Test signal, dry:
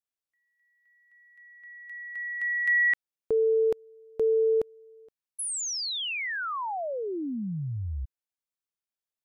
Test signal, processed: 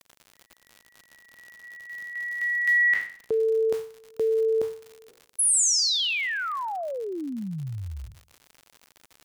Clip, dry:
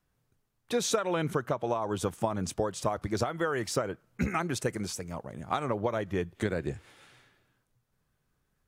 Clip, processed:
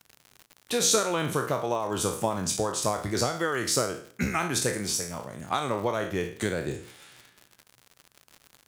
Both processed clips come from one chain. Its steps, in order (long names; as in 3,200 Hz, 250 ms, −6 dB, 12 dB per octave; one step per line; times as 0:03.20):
peak hold with a decay on every bin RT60 0.48 s
high-pass filter 73 Hz
high-shelf EQ 3,300 Hz +9.5 dB
surface crackle 110 per second −36 dBFS